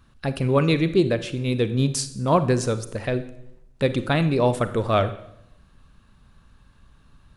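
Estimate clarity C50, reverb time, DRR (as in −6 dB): 13.5 dB, 0.80 s, 11.5 dB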